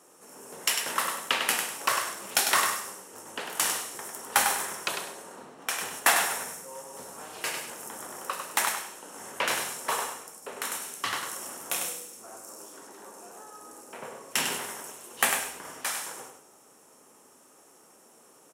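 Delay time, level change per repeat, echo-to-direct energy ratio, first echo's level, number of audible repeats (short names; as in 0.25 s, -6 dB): 0.1 s, -12.0 dB, -6.0 dB, -6.5 dB, 2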